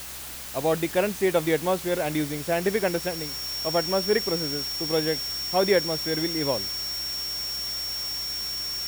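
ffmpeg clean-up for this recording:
-af "bandreject=f=64.8:t=h:w=4,bandreject=f=129.6:t=h:w=4,bandreject=f=194.4:t=h:w=4,bandreject=f=259.2:t=h:w=4,bandreject=f=324:t=h:w=4,bandreject=f=5.5k:w=30,afftdn=nr=30:nf=-35"

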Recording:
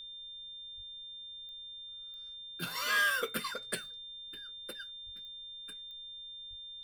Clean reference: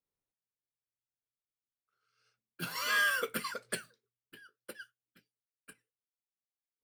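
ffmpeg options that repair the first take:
-filter_complex "[0:a]adeclick=t=4,bandreject=f=3.6k:w=30,asplit=3[a][b][c];[a]afade=t=out:st=0.76:d=0.02[d];[b]highpass=f=140:w=0.5412,highpass=f=140:w=1.3066,afade=t=in:st=0.76:d=0.02,afade=t=out:st=0.88:d=0.02[e];[c]afade=t=in:st=0.88:d=0.02[f];[d][e][f]amix=inputs=3:normalize=0,asplit=3[g][h][i];[g]afade=t=out:st=5.05:d=0.02[j];[h]highpass=f=140:w=0.5412,highpass=f=140:w=1.3066,afade=t=in:st=5.05:d=0.02,afade=t=out:st=5.17:d=0.02[k];[i]afade=t=in:st=5.17:d=0.02[l];[j][k][l]amix=inputs=3:normalize=0,asplit=3[m][n][o];[m]afade=t=out:st=6.49:d=0.02[p];[n]highpass=f=140:w=0.5412,highpass=f=140:w=1.3066,afade=t=in:st=6.49:d=0.02,afade=t=out:st=6.61:d=0.02[q];[o]afade=t=in:st=6.61:d=0.02[r];[p][q][r]amix=inputs=3:normalize=0,agate=range=-21dB:threshold=-39dB"

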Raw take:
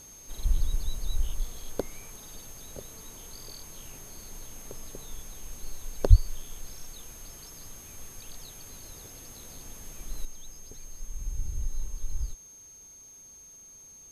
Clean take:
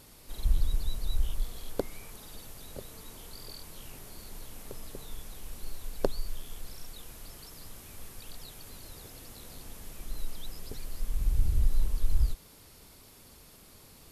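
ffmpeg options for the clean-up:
-filter_complex "[0:a]bandreject=f=6.4k:w=30,asplit=3[a][b][c];[a]afade=t=out:st=6.09:d=0.02[d];[b]highpass=f=140:w=0.5412,highpass=f=140:w=1.3066,afade=t=in:st=6.09:d=0.02,afade=t=out:st=6.21:d=0.02[e];[c]afade=t=in:st=6.21:d=0.02[f];[d][e][f]amix=inputs=3:normalize=0,asetnsamples=n=441:p=0,asendcmd='10.25 volume volume 7dB',volume=0dB"

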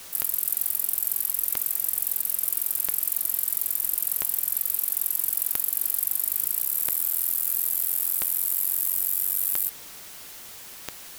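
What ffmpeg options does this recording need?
-af "adeclick=t=4,afftdn=nr=30:nf=-42"

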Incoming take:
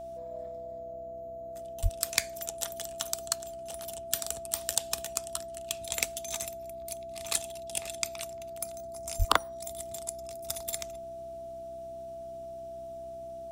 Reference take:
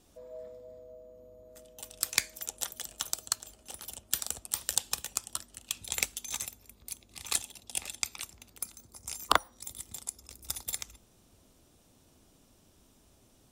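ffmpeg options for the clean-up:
-filter_complex "[0:a]bandreject=f=63.8:t=h:w=4,bandreject=f=127.6:t=h:w=4,bandreject=f=191.4:t=h:w=4,bandreject=f=255.2:t=h:w=4,bandreject=f=319:t=h:w=4,bandreject=f=382.8:t=h:w=4,bandreject=f=670:w=30,asplit=3[a][b][c];[a]afade=t=out:st=1.82:d=0.02[d];[b]highpass=f=140:w=0.5412,highpass=f=140:w=1.3066,afade=t=in:st=1.82:d=0.02,afade=t=out:st=1.94:d=0.02[e];[c]afade=t=in:st=1.94:d=0.02[f];[d][e][f]amix=inputs=3:normalize=0,asplit=3[g][h][i];[g]afade=t=out:st=9.18:d=0.02[j];[h]highpass=f=140:w=0.5412,highpass=f=140:w=1.3066,afade=t=in:st=9.18:d=0.02,afade=t=out:st=9.3:d=0.02[k];[i]afade=t=in:st=9.3:d=0.02[l];[j][k][l]amix=inputs=3:normalize=0"

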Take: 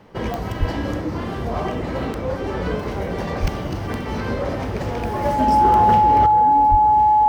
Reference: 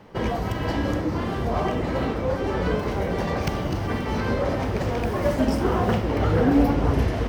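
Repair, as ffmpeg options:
-filter_complex "[0:a]adeclick=t=4,bandreject=f=850:w=30,asplit=3[a][b][c];[a]afade=t=out:st=0.59:d=0.02[d];[b]highpass=f=140:w=0.5412,highpass=f=140:w=1.3066,afade=t=in:st=0.59:d=0.02,afade=t=out:st=0.71:d=0.02[e];[c]afade=t=in:st=0.71:d=0.02[f];[d][e][f]amix=inputs=3:normalize=0,asplit=3[g][h][i];[g]afade=t=out:st=3.41:d=0.02[j];[h]highpass=f=140:w=0.5412,highpass=f=140:w=1.3066,afade=t=in:st=3.41:d=0.02,afade=t=out:st=3.53:d=0.02[k];[i]afade=t=in:st=3.53:d=0.02[l];[j][k][l]amix=inputs=3:normalize=0,asplit=3[m][n][o];[m]afade=t=out:st=6.7:d=0.02[p];[n]highpass=f=140:w=0.5412,highpass=f=140:w=1.3066,afade=t=in:st=6.7:d=0.02,afade=t=out:st=6.82:d=0.02[q];[o]afade=t=in:st=6.82:d=0.02[r];[p][q][r]amix=inputs=3:normalize=0,asetnsamples=n=441:p=0,asendcmd='6.26 volume volume 12dB',volume=0dB"

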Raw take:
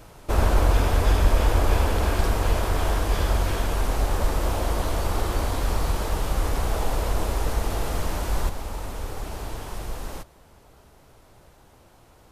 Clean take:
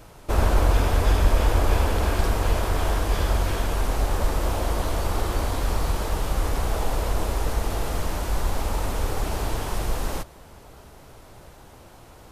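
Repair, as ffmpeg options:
-af "asetnsamples=n=441:p=0,asendcmd='8.49 volume volume 6.5dB',volume=0dB"

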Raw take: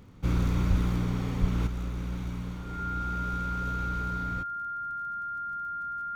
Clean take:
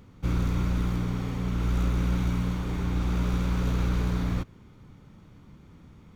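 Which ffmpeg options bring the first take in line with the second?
-filter_complex "[0:a]adeclick=t=4,bandreject=f=1.4k:w=30,asplit=3[a][b][c];[a]afade=t=out:st=0.69:d=0.02[d];[b]highpass=f=140:w=0.5412,highpass=f=140:w=1.3066,afade=t=in:st=0.69:d=0.02,afade=t=out:st=0.81:d=0.02[e];[c]afade=t=in:st=0.81:d=0.02[f];[d][e][f]amix=inputs=3:normalize=0,asplit=3[g][h][i];[g]afade=t=out:st=1.4:d=0.02[j];[h]highpass=f=140:w=0.5412,highpass=f=140:w=1.3066,afade=t=in:st=1.4:d=0.02,afade=t=out:st=1.52:d=0.02[k];[i]afade=t=in:st=1.52:d=0.02[l];[j][k][l]amix=inputs=3:normalize=0,asetnsamples=n=441:p=0,asendcmd='1.67 volume volume 8dB',volume=0dB"

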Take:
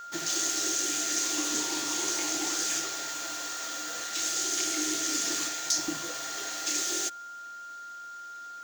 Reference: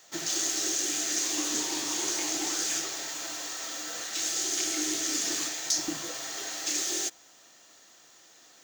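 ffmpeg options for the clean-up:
-af "bandreject=f=1.4k:w=30"

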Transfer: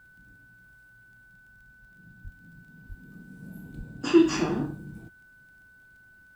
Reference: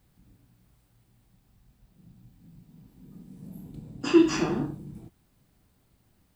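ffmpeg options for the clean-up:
-filter_complex "[0:a]adeclick=t=4,bandreject=f=1.5k:w=30,asplit=3[a][b][c];[a]afade=t=out:st=2.23:d=0.02[d];[b]highpass=f=140:w=0.5412,highpass=f=140:w=1.3066,afade=t=in:st=2.23:d=0.02,afade=t=out:st=2.35:d=0.02[e];[c]afade=t=in:st=2.35:d=0.02[f];[d][e][f]amix=inputs=3:normalize=0,asplit=3[g][h][i];[g]afade=t=out:st=2.88:d=0.02[j];[h]highpass=f=140:w=0.5412,highpass=f=140:w=1.3066,afade=t=in:st=2.88:d=0.02,afade=t=out:st=3:d=0.02[k];[i]afade=t=in:st=3:d=0.02[l];[j][k][l]amix=inputs=3:normalize=0,asplit=3[m][n][o];[m]afade=t=out:st=3.77:d=0.02[p];[n]highpass=f=140:w=0.5412,highpass=f=140:w=1.3066,afade=t=in:st=3.77:d=0.02,afade=t=out:st=3.89:d=0.02[q];[o]afade=t=in:st=3.89:d=0.02[r];[p][q][r]amix=inputs=3:normalize=0"

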